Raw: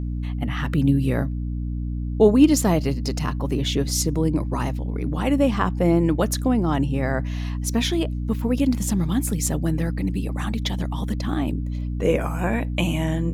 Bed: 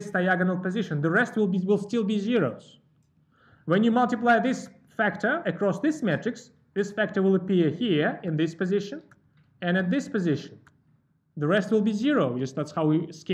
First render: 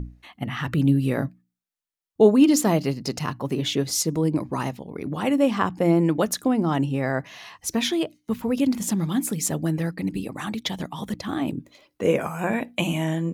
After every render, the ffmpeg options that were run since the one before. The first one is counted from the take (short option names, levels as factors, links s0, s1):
-af "bandreject=f=60:t=h:w=6,bandreject=f=120:t=h:w=6,bandreject=f=180:t=h:w=6,bandreject=f=240:t=h:w=6,bandreject=f=300:t=h:w=6"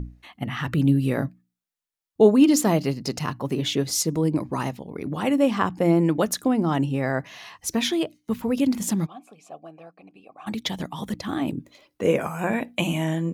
-filter_complex "[0:a]asplit=3[s0][s1][s2];[s0]afade=t=out:st=9.05:d=0.02[s3];[s1]asplit=3[s4][s5][s6];[s4]bandpass=f=730:t=q:w=8,volume=1[s7];[s5]bandpass=f=1090:t=q:w=8,volume=0.501[s8];[s6]bandpass=f=2440:t=q:w=8,volume=0.355[s9];[s7][s8][s9]amix=inputs=3:normalize=0,afade=t=in:st=9.05:d=0.02,afade=t=out:st=10.46:d=0.02[s10];[s2]afade=t=in:st=10.46:d=0.02[s11];[s3][s10][s11]amix=inputs=3:normalize=0"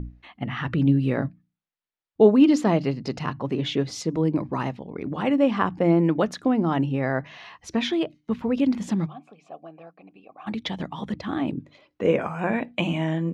-af "lowpass=3400,bandreject=f=50:t=h:w=6,bandreject=f=100:t=h:w=6,bandreject=f=150:t=h:w=6"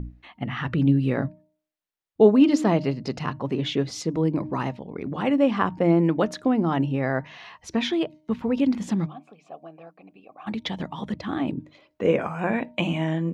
-af "bandreject=f=308.3:t=h:w=4,bandreject=f=616.6:t=h:w=4,bandreject=f=924.9:t=h:w=4"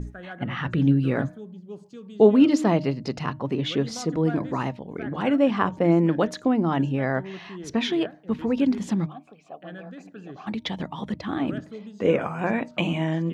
-filter_complex "[1:a]volume=0.15[s0];[0:a][s0]amix=inputs=2:normalize=0"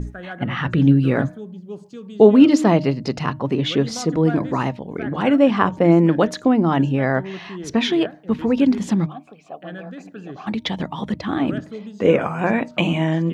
-af "volume=1.88,alimiter=limit=0.891:level=0:latency=1"